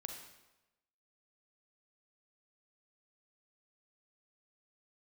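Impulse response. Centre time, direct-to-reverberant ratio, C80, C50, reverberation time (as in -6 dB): 35 ms, 3.0 dB, 7.0 dB, 4.5 dB, 1.0 s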